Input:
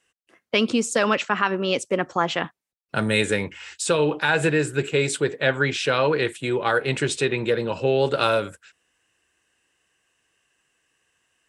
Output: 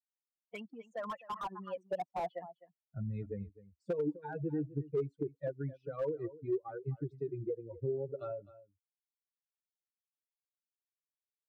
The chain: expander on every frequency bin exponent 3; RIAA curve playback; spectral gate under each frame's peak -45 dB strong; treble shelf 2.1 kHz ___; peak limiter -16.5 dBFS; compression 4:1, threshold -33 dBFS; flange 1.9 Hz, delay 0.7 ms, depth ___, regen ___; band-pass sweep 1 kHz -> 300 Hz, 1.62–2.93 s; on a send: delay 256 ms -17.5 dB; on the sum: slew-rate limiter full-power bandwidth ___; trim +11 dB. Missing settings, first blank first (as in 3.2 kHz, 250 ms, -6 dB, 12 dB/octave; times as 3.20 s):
-11.5 dB, 1.4 ms, +24%, 4.8 Hz